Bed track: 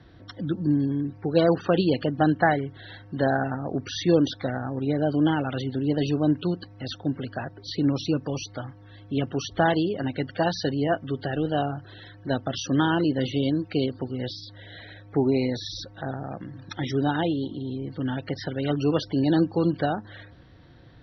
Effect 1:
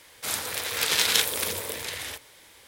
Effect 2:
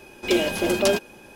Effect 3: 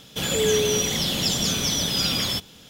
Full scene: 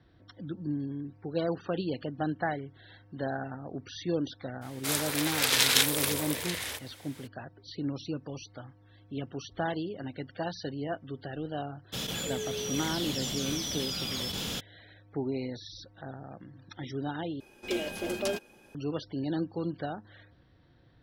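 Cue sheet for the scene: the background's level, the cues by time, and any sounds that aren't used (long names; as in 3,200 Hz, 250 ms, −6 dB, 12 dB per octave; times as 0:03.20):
bed track −10.5 dB
0:04.61: mix in 1 −1 dB, fades 0.02 s
0:11.92: mix in 3 −16 dB, fades 0.02 s + envelope flattener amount 100%
0:17.40: overwrite with 2 −11 dB + notch filter 970 Hz, Q 13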